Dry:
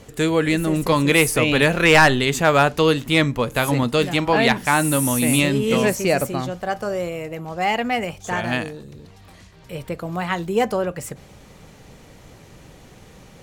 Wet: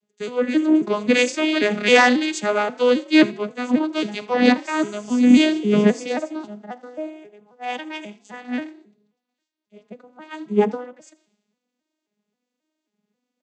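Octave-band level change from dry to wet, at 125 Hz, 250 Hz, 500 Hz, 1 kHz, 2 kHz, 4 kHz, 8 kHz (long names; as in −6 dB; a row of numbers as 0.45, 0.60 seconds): −12.0, +3.0, −1.5, −4.5, −3.5, −2.5, −9.0 decibels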